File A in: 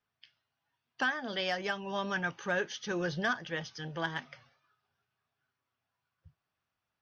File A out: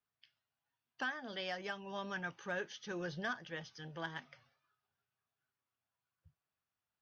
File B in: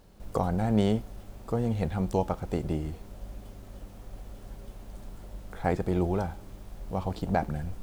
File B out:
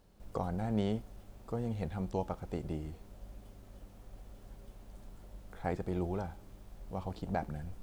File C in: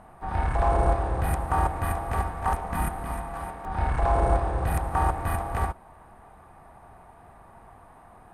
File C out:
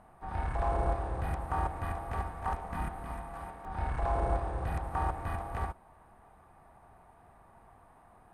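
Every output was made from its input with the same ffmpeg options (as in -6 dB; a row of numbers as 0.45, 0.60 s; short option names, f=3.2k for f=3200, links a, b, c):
-filter_complex "[0:a]acrossover=split=6400[a][b];[b]acompressor=threshold=-55dB:ratio=4:attack=1:release=60[c];[a][c]amix=inputs=2:normalize=0,volume=-8dB"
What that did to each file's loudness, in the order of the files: -8.0, -8.0, -8.0 LU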